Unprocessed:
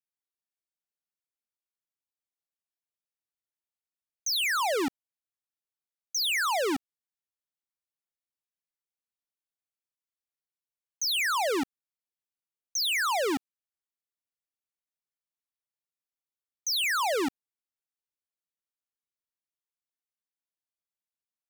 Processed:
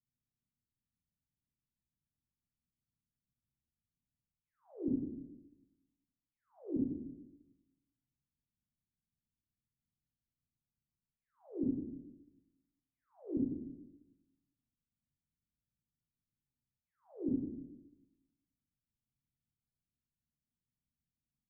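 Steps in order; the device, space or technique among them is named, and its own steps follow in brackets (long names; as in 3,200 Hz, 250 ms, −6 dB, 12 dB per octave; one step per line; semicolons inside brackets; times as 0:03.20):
club heard from the street (brickwall limiter −37.5 dBFS, peak gain reduction 11 dB; low-pass filter 210 Hz 24 dB per octave; convolution reverb RT60 1.0 s, pre-delay 18 ms, DRR −6 dB)
level +13 dB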